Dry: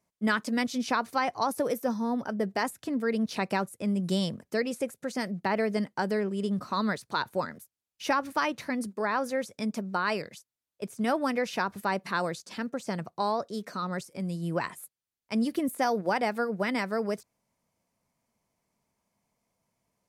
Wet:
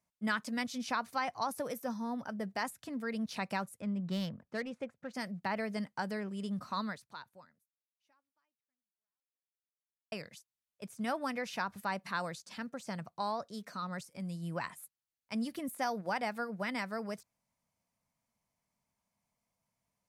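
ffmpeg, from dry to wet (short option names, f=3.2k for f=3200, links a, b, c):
-filter_complex "[0:a]asplit=3[a][b][c];[a]afade=t=out:st=3.8:d=0.02[d];[b]adynamicsmooth=sensitivity=4:basefreq=1.9k,afade=t=in:st=3.8:d=0.02,afade=t=out:st=5.13:d=0.02[e];[c]afade=t=in:st=5.13:d=0.02[f];[d][e][f]amix=inputs=3:normalize=0,asplit=2[g][h];[g]atrim=end=10.12,asetpts=PTS-STARTPTS,afade=t=out:st=6.78:d=3.34:c=exp[i];[h]atrim=start=10.12,asetpts=PTS-STARTPTS,afade=t=in:d=0.004:c=hsin[j];[i][j]concat=n=2:v=0:a=1,equalizer=f=380:w=1.5:g=-8.5,volume=-5.5dB"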